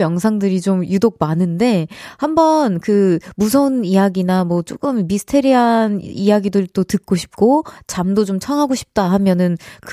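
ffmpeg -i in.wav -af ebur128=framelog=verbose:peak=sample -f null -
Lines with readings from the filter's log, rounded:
Integrated loudness:
  I:         -16.1 LUFS
  Threshold: -26.1 LUFS
Loudness range:
  LRA:         1.6 LU
  Threshold: -36.0 LUFS
  LRA low:   -17.0 LUFS
  LRA high:  -15.4 LUFS
Sample peak:
  Peak:       -1.1 dBFS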